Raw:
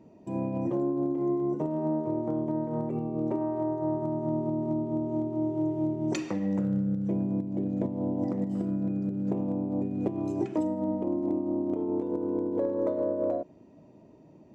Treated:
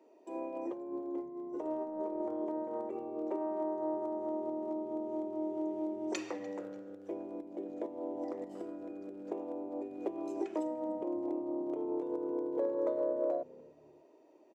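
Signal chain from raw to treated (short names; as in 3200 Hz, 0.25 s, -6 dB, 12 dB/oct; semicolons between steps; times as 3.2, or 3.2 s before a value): steep high-pass 330 Hz 36 dB/oct; 0.72–2.49 negative-ratio compressor -34 dBFS, ratio -0.5; frequency-shifting echo 0.295 s, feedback 35%, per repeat -99 Hz, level -22.5 dB; gain -3.5 dB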